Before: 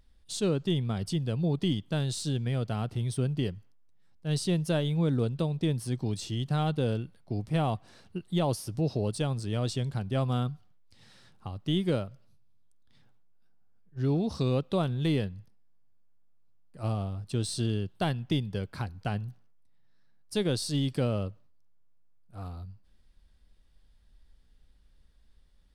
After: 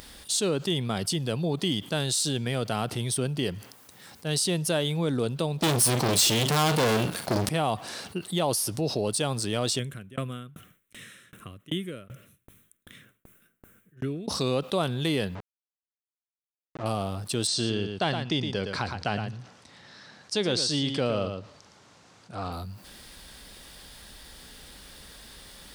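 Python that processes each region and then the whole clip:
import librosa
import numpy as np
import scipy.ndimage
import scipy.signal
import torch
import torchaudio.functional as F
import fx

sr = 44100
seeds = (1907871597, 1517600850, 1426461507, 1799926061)

y = fx.chain(x, sr, fx.doubler(ms=41.0, db=-13.0),
    fx.leveller(passes=5), at=(5.62, 7.49))
y = fx.chain(y, sr, fx.fixed_phaser(hz=2000.0, stages=4),
    fx.tremolo_decay(direction='decaying', hz=2.6, depth_db=37), at=(9.79, 14.28))
y = fx.chain(y, sr, fx.delta_hold(step_db=-42.0),
    fx.spacing_loss(db_at_10k=35), at=(15.35, 16.86))
y = fx.chain(y, sr, fx.lowpass(hz=6700.0, slope=24),
    fx.echo_single(ms=114, db=-11.0), at=(17.47, 22.52))
y = fx.highpass(y, sr, hz=420.0, slope=6)
y = fx.high_shelf(y, sr, hz=7200.0, db=9.0)
y = fx.env_flatten(y, sr, amount_pct=50)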